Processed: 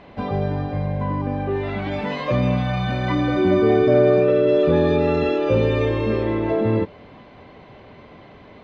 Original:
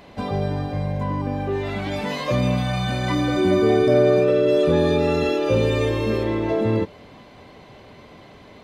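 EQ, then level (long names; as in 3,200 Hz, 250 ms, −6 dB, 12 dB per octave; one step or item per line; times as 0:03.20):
low-pass filter 3,000 Hz 12 dB per octave
+1.0 dB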